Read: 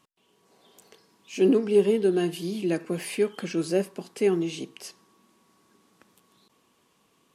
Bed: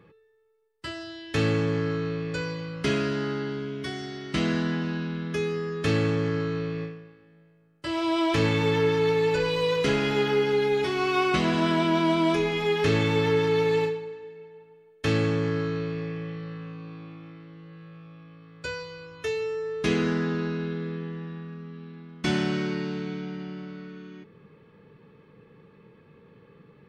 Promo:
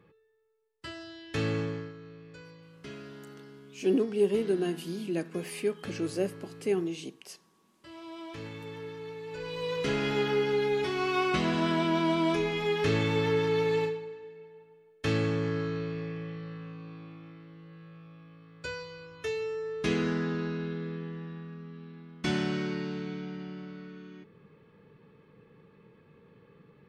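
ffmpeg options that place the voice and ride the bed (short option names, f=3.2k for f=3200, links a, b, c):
-filter_complex "[0:a]adelay=2450,volume=-5.5dB[a];[1:a]volume=8.5dB,afade=t=out:st=1.6:d=0.33:silence=0.237137,afade=t=in:st=9.26:d=0.81:silence=0.188365[b];[a][b]amix=inputs=2:normalize=0"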